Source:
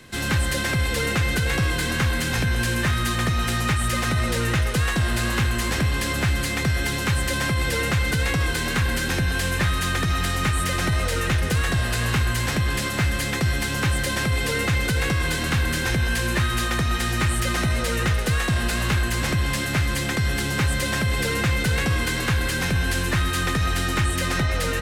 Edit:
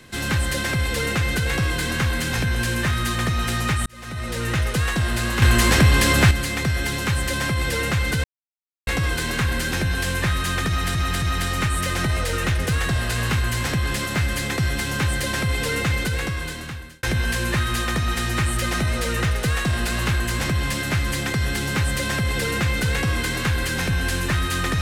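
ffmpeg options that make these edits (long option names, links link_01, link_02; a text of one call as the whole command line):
ffmpeg -i in.wav -filter_complex "[0:a]asplit=8[link_01][link_02][link_03][link_04][link_05][link_06][link_07][link_08];[link_01]atrim=end=3.86,asetpts=PTS-STARTPTS,afade=type=out:start_time=3.856:duration=0.004:curve=hsin[link_09];[link_02]atrim=start=3.86:end=5.422,asetpts=PTS-STARTPTS,afade=type=in:duration=0.75[link_10];[link_03]atrim=start=5.418:end=6.312,asetpts=PTS-STARTPTS,volume=7.5dB[link_11];[link_04]atrim=start=6.308:end=8.24,asetpts=PTS-STARTPTS,afade=type=out:start_time=1.928:duration=0.004:curve=hsin,apad=pad_dur=0.63[link_12];[link_05]atrim=start=8.24:end=10.322,asetpts=PTS-STARTPTS,afade=type=in:duration=0.004:curve=hsin[link_13];[link_06]atrim=start=10.048:end=10.322[link_14];[link_07]atrim=start=10.048:end=15.86,asetpts=PTS-STARTPTS,afade=type=out:start_time=4.712:duration=1.1[link_15];[link_08]atrim=start=15.86,asetpts=PTS-STARTPTS,afade=type=in:duration=0.004:curve=hsin[link_16];[link_09][link_10]concat=n=2:v=0:a=1[link_17];[link_17][link_11]acrossfade=duration=0.004:curve1=hsin:curve2=hsin[link_18];[link_12][link_13]concat=n=2:v=0:a=1[link_19];[link_18][link_19]acrossfade=duration=0.004:curve1=hsin:curve2=hsin[link_20];[link_20][link_14]acrossfade=duration=0.004:curve1=hsin:curve2=hsin[link_21];[link_15][link_16]concat=n=2:v=0:a=1[link_22];[link_21][link_22]acrossfade=duration=0.004:curve1=hsin:curve2=hsin" out.wav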